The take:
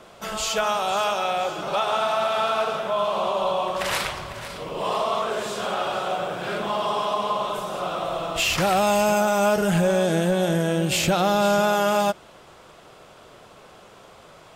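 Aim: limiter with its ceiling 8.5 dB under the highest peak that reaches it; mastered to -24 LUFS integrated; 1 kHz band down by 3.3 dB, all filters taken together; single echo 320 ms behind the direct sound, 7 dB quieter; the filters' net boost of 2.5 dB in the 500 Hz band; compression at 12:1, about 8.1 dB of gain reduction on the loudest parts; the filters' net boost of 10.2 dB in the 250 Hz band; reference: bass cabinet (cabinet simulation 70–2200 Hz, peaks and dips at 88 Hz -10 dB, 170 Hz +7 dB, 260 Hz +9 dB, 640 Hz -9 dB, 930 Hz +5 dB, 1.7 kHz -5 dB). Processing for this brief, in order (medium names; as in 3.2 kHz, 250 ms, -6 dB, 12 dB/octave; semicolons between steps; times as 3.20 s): peaking EQ 250 Hz +7 dB; peaking EQ 500 Hz +9 dB; peaking EQ 1 kHz -8.5 dB; compression 12:1, threshold -19 dBFS; peak limiter -19 dBFS; cabinet simulation 70–2200 Hz, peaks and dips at 88 Hz -10 dB, 170 Hz +7 dB, 260 Hz +9 dB, 640 Hz -9 dB, 930 Hz +5 dB, 1.7 kHz -5 dB; delay 320 ms -7 dB; trim +3.5 dB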